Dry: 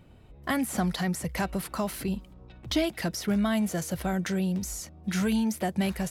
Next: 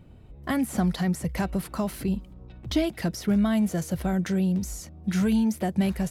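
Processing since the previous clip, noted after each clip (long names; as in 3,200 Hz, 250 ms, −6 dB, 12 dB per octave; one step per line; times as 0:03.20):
low-shelf EQ 460 Hz +7.5 dB
level −2.5 dB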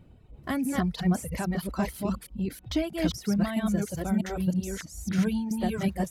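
delay that plays each chunk backwards 324 ms, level 0 dB
reverb reduction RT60 1.3 s
level −3 dB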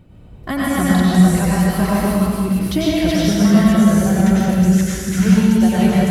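dense smooth reverb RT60 1.7 s, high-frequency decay 0.85×, pre-delay 80 ms, DRR −6 dB
level +6.5 dB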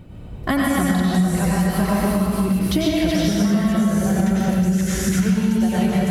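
downward compressor 5 to 1, threshold −22 dBFS, peak gain reduction 14 dB
level +5.5 dB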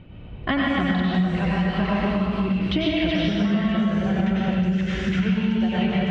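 transistor ladder low-pass 3,400 Hz, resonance 50%
level +6 dB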